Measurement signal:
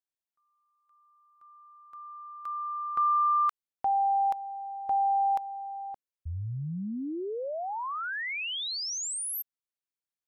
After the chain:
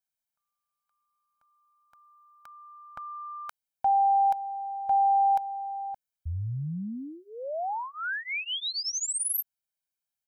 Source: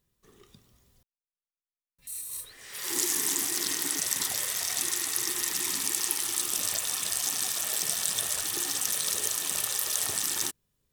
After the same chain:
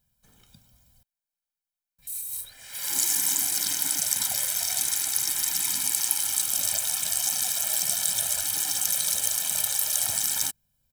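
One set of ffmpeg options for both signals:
ffmpeg -i in.wav -af "highshelf=frequency=9200:gain=7,aecho=1:1:1.3:0.97,volume=-2.5dB" out.wav

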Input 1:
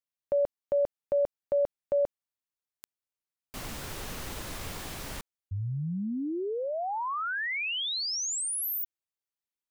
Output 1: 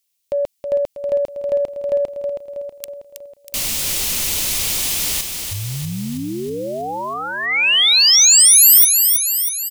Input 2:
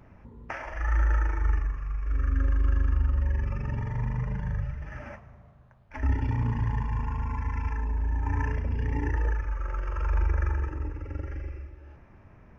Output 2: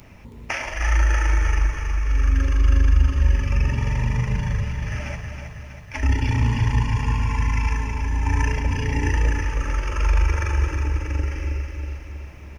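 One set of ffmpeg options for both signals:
ffmpeg -i in.wav -af "aexciter=amount=4.9:drive=4.5:freq=2200,aecho=1:1:321|642|963|1284|1605|1926|2247:0.473|0.27|0.154|0.0876|0.0499|0.0285|0.0162,acontrast=49" out.wav

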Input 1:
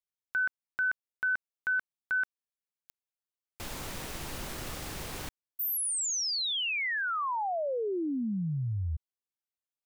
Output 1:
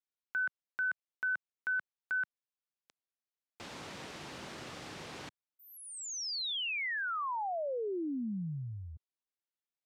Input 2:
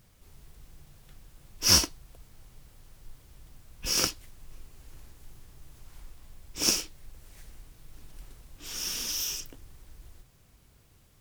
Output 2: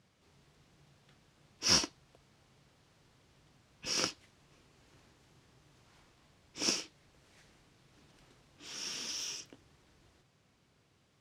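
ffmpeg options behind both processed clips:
ffmpeg -i in.wav -af "highpass=140,lowpass=5500,volume=-4dB" out.wav

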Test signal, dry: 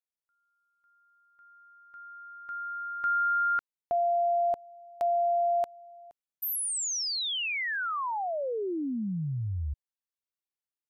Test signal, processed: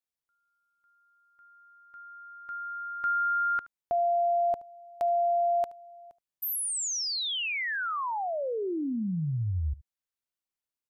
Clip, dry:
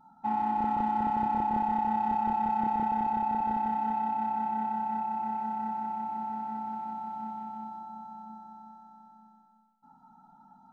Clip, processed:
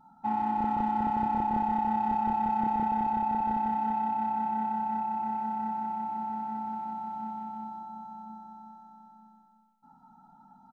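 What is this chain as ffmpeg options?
ffmpeg -i in.wav -af "lowshelf=frequency=160:gain=3.5,aecho=1:1:74:0.1" out.wav

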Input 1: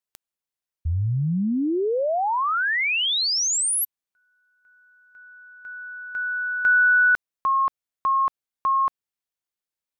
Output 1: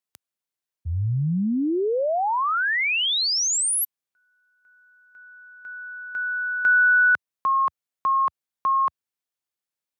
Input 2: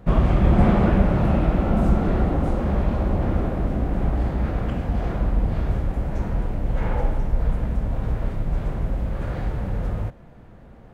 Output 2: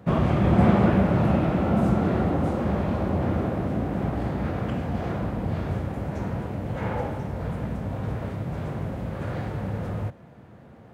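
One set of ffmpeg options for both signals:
ffmpeg -i in.wav -af "highpass=frequency=83:width=0.5412,highpass=frequency=83:width=1.3066" out.wav

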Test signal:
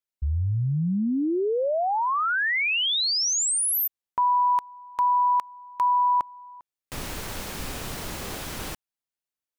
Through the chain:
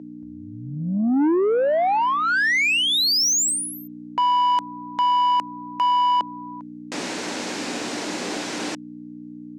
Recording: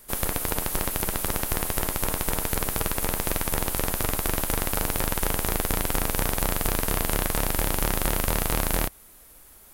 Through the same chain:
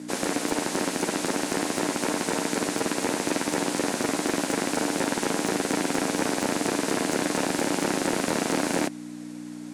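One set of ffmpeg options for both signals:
ffmpeg -i in.wav -af "aeval=exprs='val(0)+0.0158*(sin(2*PI*60*n/s)+sin(2*PI*2*60*n/s)/2+sin(2*PI*3*60*n/s)/3+sin(2*PI*4*60*n/s)/4+sin(2*PI*5*60*n/s)/5)':channel_layout=same,highpass=frequency=220:width=0.5412,highpass=frequency=220:width=1.3066,equalizer=frequency=300:width_type=q:width=4:gain=5,equalizer=frequency=1200:width_type=q:width=4:gain=-5,equalizer=frequency=3200:width_type=q:width=4:gain=-3,lowpass=frequency=7600:width=0.5412,lowpass=frequency=7600:width=1.3066,asoftclip=type=tanh:threshold=-24dB,volume=8dB" out.wav

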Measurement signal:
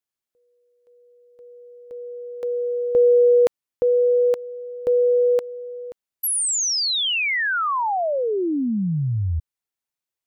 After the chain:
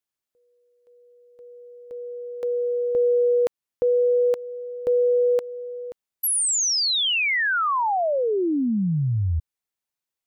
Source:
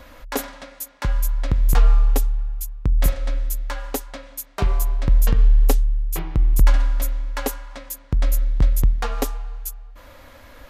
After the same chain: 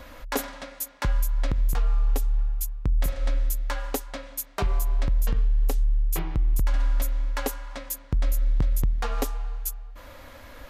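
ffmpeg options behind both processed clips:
ffmpeg -i in.wav -af "alimiter=limit=-16dB:level=0:latency=1:release=208" out.wav

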